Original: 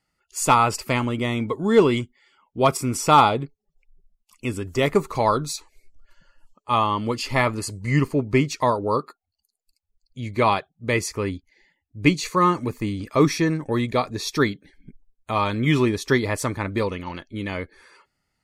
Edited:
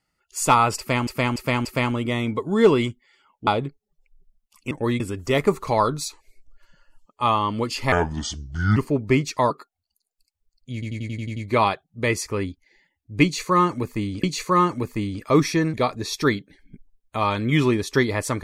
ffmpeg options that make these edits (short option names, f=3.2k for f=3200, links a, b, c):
-filter_complex "[0:a]asplit=19[a][b][c][d][e][f][g][h][i][j][k][l][m][n][o][p][q][r][s];[a]atrim=end=1.072[t];[b]atrim=start=0.778:end=1.072[u];[c]atrim=start=0.778:end=1.072[v];[d]atrim=start=0.778:end=2.602[w];[e]atrim=start=3.238:end=4.482[x];[f]atrim=start=13.588:end=13.882[y];[g]atrim=start=4.478:end=7.404[z];[h]atrim=start=7.4:end=8,asetpts=PTS-STARTPTS,asetrate=31311,aresample=44100[aa];[i]atrim=start=7.996:end=8.742[ab];[j]atrim=start=8.988:end=10.312[ac];[k]atrim=start=10.218:end=10.312[ad];[l]atrim=start=10.218:end=10.312[ae];[m]atrim=start=10.218:end=10.312[af];[n]atrim=start=10.218:end=10.312[ag];[o]atrim=start=10.218:end=10.312[ah];[p]atrim=start=10.218:end=10.312[ai];[q]atrim=start=10.218:end=13.092[aj];[r]atrim=start=12.088:end=13.592[ak];[s]atrim=start=13.878[al];[t][u]acrossfade=d=0.004:c1=hsin:c2=hsin[am];[am][v]acrossfade=d=0.004:c1=hsin:c2=hsin[an];[an][w]acrossfade=d=0.004:c1=hsin:c2=hsin[ao];[ao][x]acrossfade=d=0.004:c1=hsin:c2=hsin[ap];[ap][y]acrossfade=d=0.004:c1=hsin:c2=hsin[aq];[aq][z]acrossfade=d=0.004:c1=hsin:c2=hsin[ar];[ar][aa]acrossfade=d=0.004:c1=hsin:c2=hsin[as];[as][ab]acrossfade=d=0.004:c1=hsin:c2=hsin[at];[at][ac]acrossfade=d=0.004:c1=hsin:c2=hsin[au];[au][ad]acrossfade=d=0.004:c1=hsin:c2=hsin[av];[av][ae]acrossfade=d=0.004:c1=hsin:c2=hsin[aw];[aw][af]acrossfade=d=0.004:c1=hsin:c2=hsin[ax];[ax][ag]acrossfade=d=0.004:c1=hsin:c2=hsin[ay];[ay][ah]acrossfade=d=0.004:c1=hsin:c2=hsin[az];[az][ai]acrossfade=d=0.004:c1=hsin:c2=hsin[ba];[ba][aj]acrossfade=d=0.004:c1=hsin:c2=hsin[bb];[bb][ak]acrossfade=d=0.004:c1=hsin:c2=hsin[bc];[bc][al]acrossfade=d=0.004:c1=hsin:c2=hsin"